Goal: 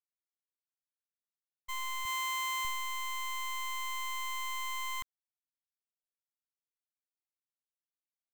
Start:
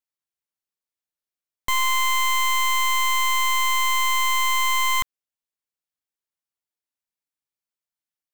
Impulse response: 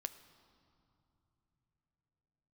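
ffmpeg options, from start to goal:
-filter_complex "[0:a]asettb=1/sr,asplit=3[a][b][c];[a]atrim=end=2.054[d];[b]atrim=start=2.05:end=2.65,asetpts=PTS-STARTPTS,afade=t=in:d=0.004:c=qsin,afade=t=out:st=0.596:d=0.004:c=qsin,highpass=94[e];[c]atrim=start=2.646[f];[d][e]acrossfade=d=0.004:c1=hsin:c2=qsin[g];[g][f]acrossfade=d=0.004:c1=qsin:c2=hsin,agate=range=-33dB:threshold=-16dB:ratio=3:detection=peak,volume=-8dB"

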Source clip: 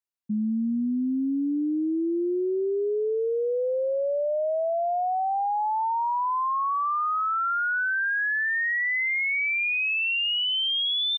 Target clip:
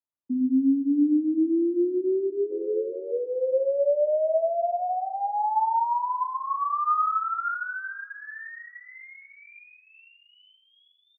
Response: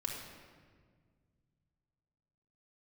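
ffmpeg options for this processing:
-filter_complex "[0:a]lowpass=f=1.1k:w=0.5412,lowpass=f=1.1k:w=1.3066,asplit=3[a][b][c];[a]afade=t=out:st=6.87:d=0.02[d];[b]acontrast=42,afade=t=in:st=6.87:d=0.02,afade=t=out:st=7.5:d=0.02[e];[c]afade=t=in:st=7.5:d=0.02[f];[d][e][f]amix=inputs=3:normalize=0,afreqshift=41,asplit=3[g][h][i];[g]afade=t=out:st=2.5:d=0.02[j];[h]tremolo=f=88:d=0.788,afade=t=in:st=2.5:d=0.02,afade=t=out:st=3.11:d=0.02[k];[i]afade=t=in:st=3.11:d=0.02[l];[j][k][l]amix=inputs=3:normalize=0,asplit=2[m][n];[n]adelay=460,lowpass=f=820:p=1,volume=-21dB,asplit=2[o][p];[p]adelay=460,lowpass=f=820:p=1,volume=0.49,asplit=2[q][r];[r]adelay=460,lowpass=f=820:p=1,volume=0.49,asplit=2[s][t];[t]adelay=460,lowpass=f=820:p=1,volume=0.49[u];[m][o][q][s][u]amix=inputs=5:normalize=0[v];[1:a]atrim=start_sample=2205,afade=t=out:st=0.2:d=0.01,atrim=end_sample=9261[w];[v][w]afir=irnorm=-1:irlink=0"

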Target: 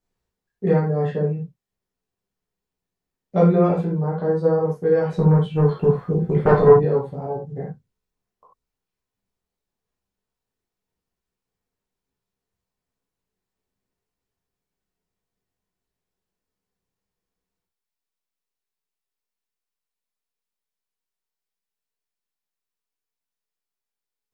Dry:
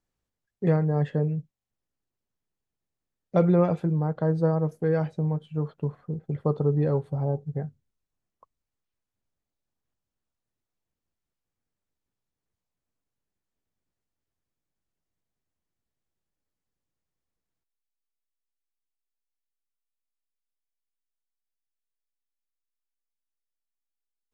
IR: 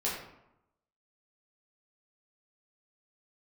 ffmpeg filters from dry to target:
-filter_complex "[0:a]asettb=1/sr,asplit=3[a][b][c];[a]atrim=end=5.094[d];[b]atrim=start=5.09:end=6.76,asetpts=PTS-STARTPTS,afade=t=in:d=0.004:c=qsin,afade=t=out:st=1.666:d=0.004:c=qsin,aeval=exprs='0.266*sin(PI/2*2.24*val(0)/0.266)':c=same[e];[c]atrim=start=6.756[f];[d][e]acrossfade=d=0.004:c1=hsin:c2=qsin[g];[g][f]acrossfade=d=0.004:c1=qsin:c2=hsin[h];[1:a]atrim=start_sample=2205,atrim=end_sample=4410[i];[h][i]afir=irnorm=-1:irlink=0,volume=-1dB"

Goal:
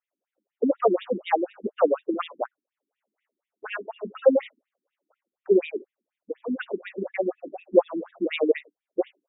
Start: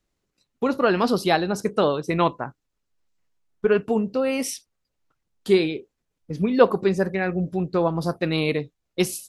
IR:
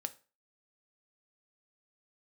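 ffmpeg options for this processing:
-af "dynaudnorm=f=150:g=5:m=15dB,equalizer=f=580:t=o:w=0.7:g=11.5,afftfilt=real='re*between(b*sr/1024,250*pow(2700/250,0.5+0.5*sin(2*PI*4.1*pts/sr))/1.41,250*pow(2700/250,0.5+0.5*sin(2*PI*4.1*pts/sr))*1.41)':imag='im*between(b*sr/1024,250*pow(2700/250,0.5+0.5*sin(2*PI*4.1*pts/sr))/1.41,250*pow(2700/250,0.5+0.5*sin(2*PI*4.1*pts/sr))*1.41)':win_size=1024:overlap=0.75,volume=-6.5dB"

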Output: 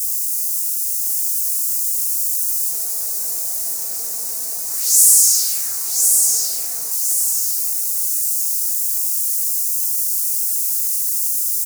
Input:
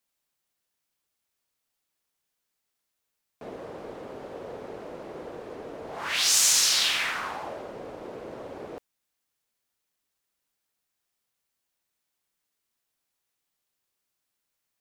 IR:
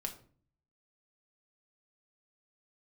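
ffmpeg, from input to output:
-af "aeval=exprs='val(0)+0.5*0.0501*sgn(val(0))':c=same,highpass=69,aecho=1:1:5.6:0.62,asetrate=56007,aresample=44100,acrusher=bits=4:mix=0:aa=0.000001,flanger=delay=16:depth=5.6:speed=0.4,aecho=1:1:1055|2110|3165|4220|5275:0.562|0.236|0.0992|0.0417|0.0175,aexciter=amount=14.1:drive=10:freq=5.2k,volume=-16.5dB"

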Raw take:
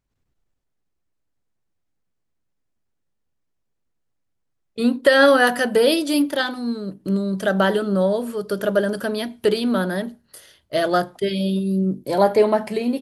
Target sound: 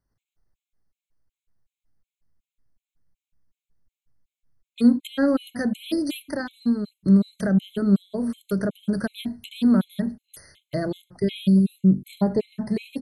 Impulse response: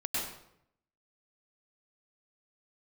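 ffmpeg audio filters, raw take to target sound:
-filter_complex "[0:a]acrossover=split=430[a][b];[b]acompressor=threshold=-29dB:ratio=5[c];[a][c]amix=inputs=2:normalize=0,asubboost=boost=4:cutoff=200,afftfilt=real='re*gt(sin(2*PI*2.7*pts/sr)*(1-2*mod(floor(b*sr/1024/2100),2)),0)':imag='im*gt(sin(2*PI*2.7*pts/sr)*(1-2*mod(floor(b*sr/1024/2100),2)),0)':win_size=1024:overlap=0.75"

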